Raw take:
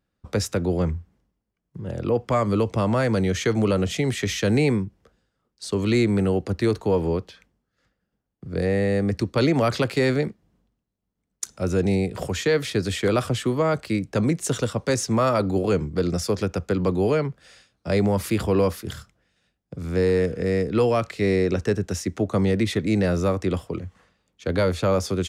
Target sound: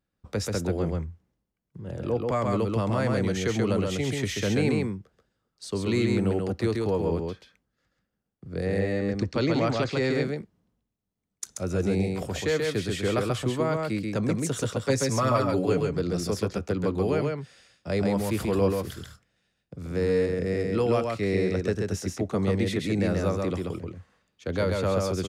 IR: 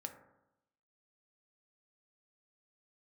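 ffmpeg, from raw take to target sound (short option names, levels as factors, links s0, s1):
-filter_complex "[0:a]asettb=1/sr,asplit=3[s0][s1][s2];[s0]atrim=end=8.794[s3];[s1]atrim=start=8.79:end=10.12,asetpts=PTS-STARTPTS,afade=t=in:d=0.004:c=qsin,afade=t=out:st=1.326:d=0.004:c=qsin,lowpass=f=7400:w=0.5412,lowpass=f=7400:w=1.3066[s4];[s2]atrim=start=10.116[s5];[s3][s4]acrossfade=d=0.004:c1=hsin:c2=qsin[s6];[s6][s5]acrossfade=d=0.004:c1=qsin:c2=hsin,asettb=1/sr,asplit=3[s7][s8][s9];[s7]atrim=end=14.784[s10];[s8]atrim=start=14.78:end=15.89,asetpts=PTS-STARTPTS,afade=t=in:d=0.004:c=qsin,afade=t=out:st=1.106:d=0.004:c=qsin,aecho=1:1:7.1:0.67,atrim=end_sample=48951[s11];[s9]atrim=start=15.886[s12];[s10][s11]acrossfade=d=0.004:c1=hsin:c2=qsin[s13];[s13][s12]acrossfade=d=0.004:c1=qsin:c2=hsin,aecho=1:1:134:0.708,volume=0.531"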